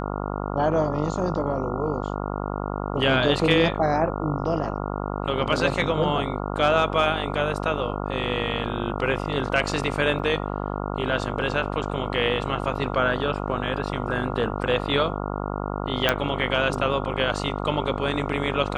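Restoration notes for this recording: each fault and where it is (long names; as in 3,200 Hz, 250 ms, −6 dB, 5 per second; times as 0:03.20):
mains buzz 50 Hz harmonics 28 −29 dBFS
0:10.19: drop-out 4.6 ms
0:16.09: click −5 dBFS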